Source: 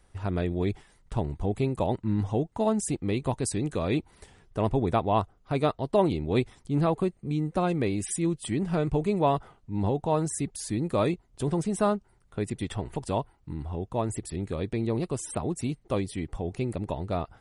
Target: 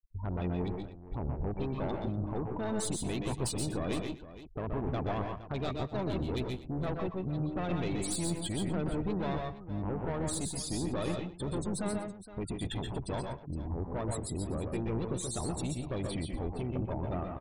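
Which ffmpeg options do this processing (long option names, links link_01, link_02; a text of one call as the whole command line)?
ffmpeg -i in.wav -filter_complex "[0:a]asplit=2[link_01][link_02];[link_02]asetrate=22050,aresample=44100,atempo=2,volume=-10dB[link_03];[link_01][link_03]amix=inputs=2:normalize=0,adynamicequalizer=threshold=0.00282:dfrequency=3500:dqfactor=1.3:tfrequency=3500:tqfactor=1.3:attack=5:release=100:ratio=0.375:range=3:mode=boostabove:tftype=bell,acrossover=split=3700[link_04][link_05];[link_04]alimiter=limit=-20.5dB:level=0:latency=1:release=37[link_06];[link_06][link_05]amix=inputs=2:normalize=0,aeval=exprs='clip(val(0),-1,0.0158)':channel_layout=same,afftfilt=real='re*gte(hypot(re,im),0.0178)':imag='im*gte(hypot(re,im),0.0178)':win_size=1024:overlap=0.75,aeval=exprs='0.119*(cos(1*acos(clip(val(0)/0.119,-1,1)))-cos(1*PI/2))+0.0188*(cos(5*acos(clip(val(0)/0.119,-1,1)))-cos(5*PI/2))':channel_layout=same,aecho=1:1:125|141|168|244|466:0.501|0.473|0.112|0.119|0.188,volume=-5.5dB" out.wav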